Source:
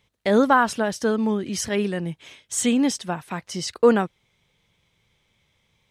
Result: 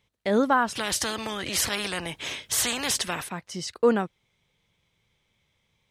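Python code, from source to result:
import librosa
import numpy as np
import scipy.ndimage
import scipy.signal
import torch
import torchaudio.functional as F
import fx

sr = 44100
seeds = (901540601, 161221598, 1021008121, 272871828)

y = fx.spectral_comp(x, sr, ratio=4.0, at=(0.75, 3.27), fade=0.02)
y = F.gain(torch.from_numpy(y), -4.5).numpy()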